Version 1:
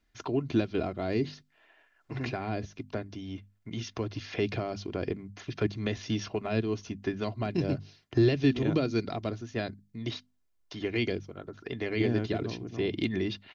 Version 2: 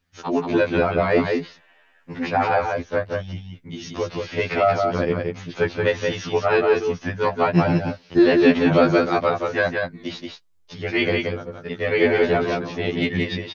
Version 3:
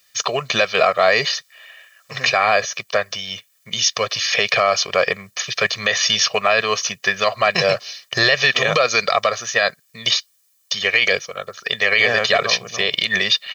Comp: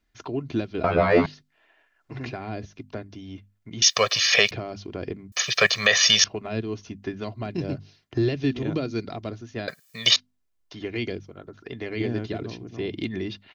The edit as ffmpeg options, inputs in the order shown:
-filter_complex "[2:a]asplit=3[a][b][c];[0:a]asplit=5[d][e][f][g][h];[d]atrim=end=0.842[i];[1:a]atrim=start=0.838:end=1.262[j];[e]atrim=start=1.258:end=3.822[k];[a]atrim=start=3.818:end=4.512[l];[f]atrim=start=4.508:end=5.322[m];[b]atrim=start=5.318:end=6.242[n];[g]atrim=start=6.238:end=9.682[o];[c]atrim=start=9.678:end=10.162[p];[h]atrim=start=10.158[q];[i][j]acrossfade=d=0.004:c1=hsin:c2=hsin[r];[r][k]acrossfade=d=0.004:c1=hsin:c2=hsin[s];[s][l]acrossfade=d=0.004:c1=hsin:c2=hsin[t];[t][m]acrossfade=d=0.004:c1=hsin:c2=hsin[u];[u][n]acrossfade=d=0.004:c1=hsin:c2=hsin[v];[v][o]acrossfade=d=0.004:c1=hsin:c2=hsin[w];[w][p]acrossfade=d=0.004:c1=hsin:c2=hsin[x];[x][q]acrossfade=d=0.004:c1=hsin:c2=hsin"

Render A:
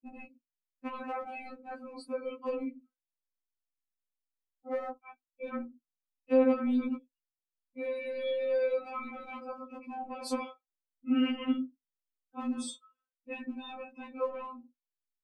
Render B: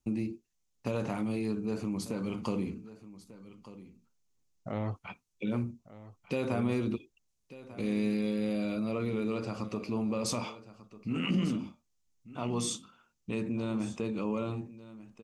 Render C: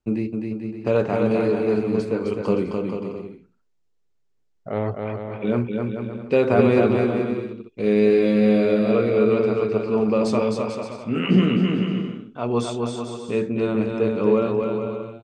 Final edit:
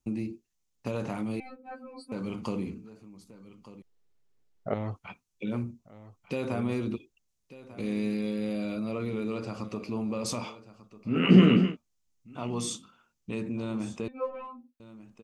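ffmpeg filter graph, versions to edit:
-filter_complex "[0:a]asplit=2[a][b];[2:a]asplit=2[c][d];[1:a]asplit=5[e][f][g][h][i];[e]atrim=end=1.402[j];[a]atrim=start=1.398:end=2.122[k];[f]atrim=start=2.118:end=3.822[l];[c]atrim=start=3.818:end=4.742[m];[g]atrim=start=4.738:end=11.27[n];[d]atrim=start=11.03:end=11.77[o];[h]atrim=start=11.53:end=14.082[p];[b]atrim=start=14.078:end=14.802[q];[i]atrim=start=14.798[r];[j][k]acrossfade=d=0.004:c1=hsin:c2=hsin[s];[s][l]acrossfade=d=0.004:c1=hsin:c2=hsin[t];[t][m]acrossfade=d=0.004:c1=hsin:c2=hsin[u];[u][n]acrossfade=d=0.004:c1=hsin:c2=hsin[v];[v][o]acrossfade=d=0.24:c1=tri:c2=tri[w];[w][p]acrossfade=d=0.24:c1=tri:c2=tri[x];[x][q]acrossfade=d=0.004:c1=hsin:c2=hsin[y];[y][r]acrossfade=d=0.004:c1=hsin:c2=hsin"

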